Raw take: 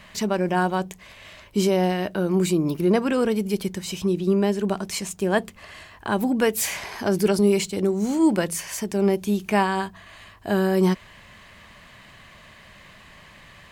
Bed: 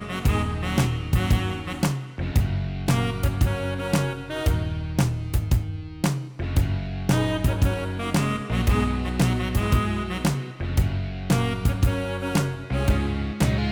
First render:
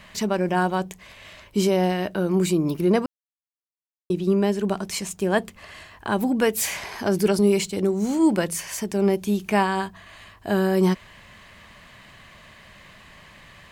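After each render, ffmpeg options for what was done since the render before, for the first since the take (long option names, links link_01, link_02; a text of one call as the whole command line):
ffmpeg -i in.wav -filter_complex "[0:a]asplit=3[link_01][link_02][link_03];[link_01]atrim=end=3.06,asetpts=PTS-STARTPTS,afade=type=out:start_time=3.056:duration=0.004:curve=hsin[link_04];[link_02]atrim=start=3.06:end=4.1,asetpts=PTS-STARTPTS,volume=0[link_05];[link_03]atrim=start=4.1,asetpts=PTS-STARTPTS,afade=type=in:duration=0.004:curve=hsin[link_06];[link_04][link_05][link_06]concat=n=3:v=0:a=1" out.wav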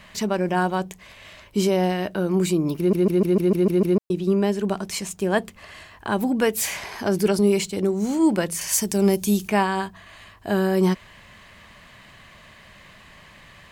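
ffmpeg -i in.wav -filter_complex "[0:a]asettb=1/sr,asplit=3[link_01][link_02][link_03];[link_01]atrim=end=8.614[link_04];[link_02]atrim=start=8.61:end=9.48,asetpts=PTS-STARTPTS,afade=type=in:duration=0.004:curve=qsin,afade=type=out:start_time=0.866:duration=0.004:curve=qsin,bass=frequency=250:gain=4,treble=frequency=4000:gain=12[link_05];[link_03]atrim=start=9.476[link_06];[link_04][link_05]acrossfade=duration=0.004:curve1=hsin:curve2=qsin[link_07];[link_07][link_06]acrossfade=duration=0.004:curve1=qsin:curve2=hsin,asplit=9[link_08][link_09][link_10][link_11][link_12][link_13][link_14][link_15][link_16];[link_08]atrim=end=2.932[link_17];[link_09]atrim=start=2.778:end=2.932[link_18];[link_10]atrim=start=2.778:end=2.932[link_19];[link_11]atrim=start=2.778:end=2.932[link_20];[link_12]atrim=start=2.778:end=2.932[link_21];[link_13]atrim=start=2.778:end=2.932[link_22];[link_14]atrim=start=2.778:end=2.932[link_23];[link_15]atrim=start=2.778:end=2.932[link_24];[link_16]atrim=start=3.978[link_25];[link_17][link_18]acrossfade=duration=0.004:curve1=hsin:curve2=hsin[link_26];[link_26][link_19]acrossfade=duration=0.004:curve1=hsin:curve2=hsin[link_27];[link_27][link_20]acrossfade=duration=0.004:curve1=hsin:curve2=hsin[link_28];[link_28][link_21]acrossfade=duration=0.004:curve1=hsin:curve2=hsin[link_29];[link_29][link_22]acrossfade=duration=0.004:curve1=hsin:curve2=hsin[link_30];[link_30][link_23]acrossfade=duration=0.004:curve1=hsin:curve2=hsin[link_31];[link_31][link_24]acrossfade=duration=0.004:curve1=hsin:curve2=hsin[link_32];[link_32][link_25]acrossfade=duration=0.004:curve1=hsin:curve2=hsin" out.wav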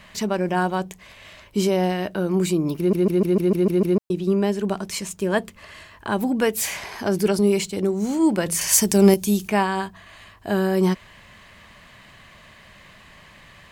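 ffmpeg -i in.wav -filter_complex "[0:a]asettb=1/sr,asplit=3[link_01][link_02][link_03];[link_01]atrim=end=4.894[link_04];[link_02]atrim=start=4.89:end=6.09,asetpts=PTS-STARTPTS,afade=type=in:duration=0.004:curve=qsin,afade=type=out:start_time=1.196:duration=0.004:curve=qsin,asuperstop=centerf=760:order=4:qfactor=8[link_05];[link_03]atrim=start=6.086[link_06];[link_04][link_05]acrossfade=duration=0.004:curve1=hsin:curve2=qsin[link_07];[link_07][link_06]acrossfade=duration=0.004:curve1=qsin:curve2=hsin,asplit=3[link_08][link_09][link_10];[link_08]atrim=end=8.462[link_11];[link_09]atrim=start=8.458:end=9.142,asetpts=PTS-STARTPTS,volume=5dB[link_12];[link_10]atrim=start=9.138[link_13];[link_11][link_12]acrossfade=duration=0.004:curve1=hsin:curve2=hsin[link_14];[link_14][link_13]acrossfade=duration=0.004:curve1=hsin:curve2=hsin" out.wav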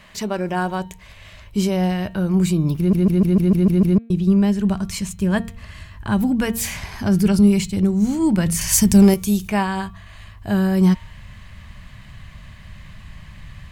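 ffmpeg -i in.wav -af "bandreject=frequency=230.2:width_type=h:width=4,bandreject=frequency=460.4:width_type=h:width=4,bandreject=frequency=690.6:width_type=h:width=4,bandreject=frequency=920.8:width_type=h:width=4,bandreject=frequency=1151:width_type=h:width=4,bandreject=frequency=1381.2:width_type=h:width=4,bandreject=frequency=1611.4:width_type=h:width=4,bandreject=frequency=1841.6:width_type=h:width=4,bandreject=frequency=2071.8:width_type=h:width=4,bandreject=frequency=2302:width_type=h:width=4,bandreject=frequency=2532.2:width_type=h:width=4,bandreject=frequency=2762.4:width_type=h:width=4,bandreject=frequency=2992.6:width_type=h:width=4,bandreject=frequency=3222.8:width_type=h:width=4,bandreject=frequency=3453:width_type=h:width=4,bandreject=frequency=3683.2:width_type=h:width=4,bandreject=frequency=3913.4:width_type=h:width=4,bandreject=frequency=4143.6:width_type=h:width=4,asubboost=boost=11:cutoff=130" out.wav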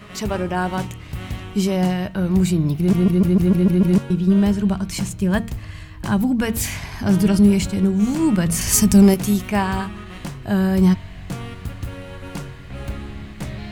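ffmpeg -i in.wav -i bed.wav -filter_complex "[1:a]volume=-8.5dB[link_01];[0:a][link_01]amix=inputs=2:normalize=0" out.wav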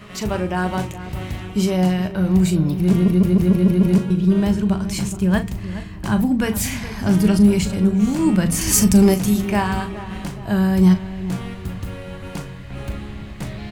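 ffmpeg -i in.wav -filter_complex "[0:a]asplit=2[link_01][link_02];[link_02]adelay=38,volume=-10.5dB[link_03];[link_01][link_03]amix=inputs=2:normalize=0,asplit=2[link_04][link_05];[link_05]adelay=419,lowpass=frequency=1600:poles=1,volume=-13dB,asplit=2[link_06][link_07];[link_07]adelay=419,lowpass=frequency=1600:poles=1,volume=0.51,asplit=2[link_08][link_09];[link_09]adelay=419,lowpass=frequency=1600:poles=1,volume=0.51,asplit=2[link_10][link_11];[link_11]adelay=419,lowpass=frequency=1600:poles=1,volume=0.51,asplit=2[link_12][link_13];[link_13]adelay=419,lowpass=frequency=1600:poles=1,volume=0.51[link_14];[link_04][link_06][link_08][link_10][link_12][link_14]amix=inputs=6:normalize=0" out.wav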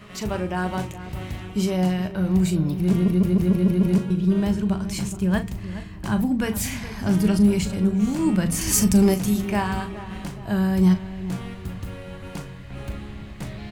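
ffmpeg -i in.wav -af "volume=-4dB" out.wav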